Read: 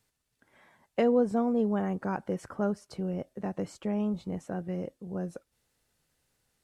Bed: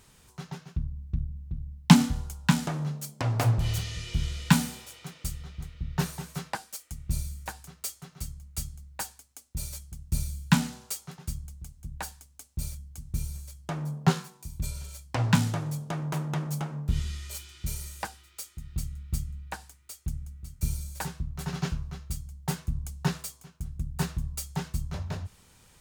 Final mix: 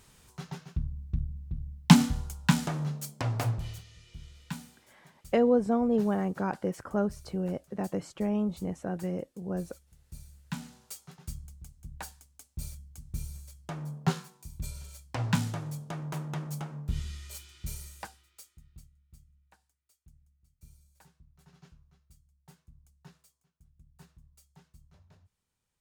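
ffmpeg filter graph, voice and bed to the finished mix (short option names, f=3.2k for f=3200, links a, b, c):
-filter_complex "[0:a]adelay=4350,volume=1dB[a];[1:a]volume=12dB,afade=t=out:st=3.12:d=0.71:silence=0.141254,afade=t=in:st=10.45:d=0.89:silence=0.223872,afade=t=out:st=17.73:d=1.18:silence=0.0891251[b];[a][b]amix=inputs=2:normalize=0"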